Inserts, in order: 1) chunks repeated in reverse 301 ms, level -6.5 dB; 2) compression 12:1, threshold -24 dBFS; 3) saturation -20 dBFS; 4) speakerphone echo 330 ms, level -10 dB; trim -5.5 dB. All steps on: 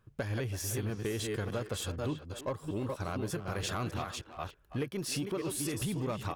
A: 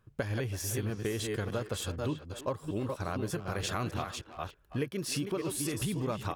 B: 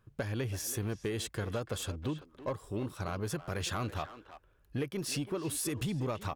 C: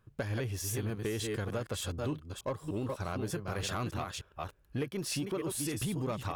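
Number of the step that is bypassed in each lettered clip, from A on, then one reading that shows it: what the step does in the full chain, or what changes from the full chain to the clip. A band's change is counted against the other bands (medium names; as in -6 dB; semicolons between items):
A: 3, crest factor change +5.5 dB; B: 1, momentary loudness spread change +1 LU; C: 4, echo-to-direct -14.0 dB to none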